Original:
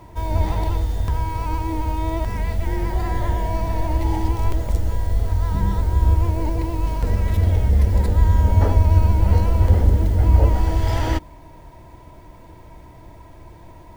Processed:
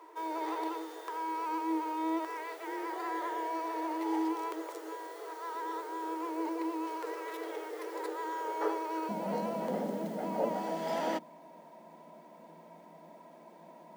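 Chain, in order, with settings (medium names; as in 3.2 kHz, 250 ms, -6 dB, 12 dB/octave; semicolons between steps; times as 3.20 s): rippled Chebyshev high-pass 310 Hz, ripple 9 dB, from 9.08 s 160 Hz; trim -2 dB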